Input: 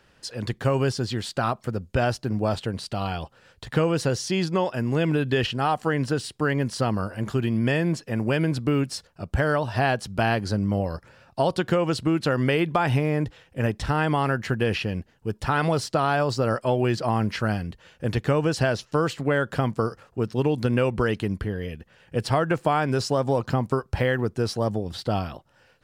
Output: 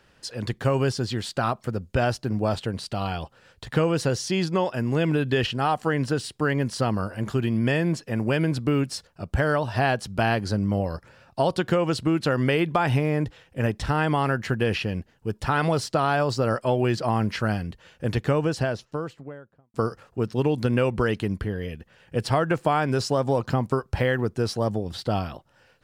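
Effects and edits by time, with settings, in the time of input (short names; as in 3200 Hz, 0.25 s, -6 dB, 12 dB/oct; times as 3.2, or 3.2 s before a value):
18.12–19.74 studio fade out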